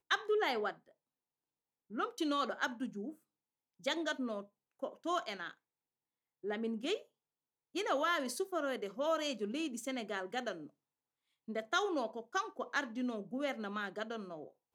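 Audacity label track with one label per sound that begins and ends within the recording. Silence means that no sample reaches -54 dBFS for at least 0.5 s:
1.900000	3.150000	sound
3.800000	5.530000	sound
6.440000	7.030000	sound
7.750000	10.690000	sound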